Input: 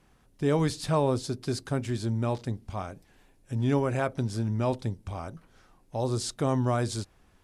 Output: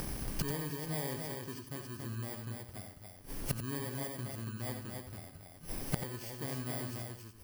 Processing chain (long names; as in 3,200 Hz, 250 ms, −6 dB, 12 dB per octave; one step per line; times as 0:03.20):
samples in bit-reversed order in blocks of 32 samples
in parallel at −1 dB: upward compression, threshold −30 dBFS
on the sum: loudspeakers that aren't time-aligned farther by 24 metres −10 dB, 96 metres −4 dB
gate with flip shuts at −25 dBFS, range −25 dB
single-tap delay 90 ms −9.5 dB
level +5 dB